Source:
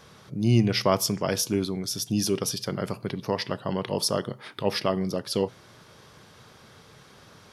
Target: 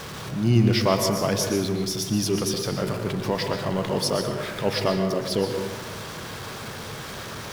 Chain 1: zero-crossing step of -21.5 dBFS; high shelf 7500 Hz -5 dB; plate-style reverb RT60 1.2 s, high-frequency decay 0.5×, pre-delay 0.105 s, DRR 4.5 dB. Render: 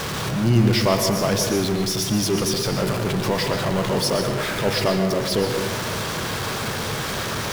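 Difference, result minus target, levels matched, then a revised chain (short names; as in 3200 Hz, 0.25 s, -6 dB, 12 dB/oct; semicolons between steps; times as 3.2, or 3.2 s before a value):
zero-crossing step: distortion +8 dB
zero-crossing step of -31.5 dBFS; high shelf 7500 Hz -5 dB; plate-style reverb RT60 1.2 s, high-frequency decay 0.5×, pre-delay 0.105 s, DRR 4.5 dB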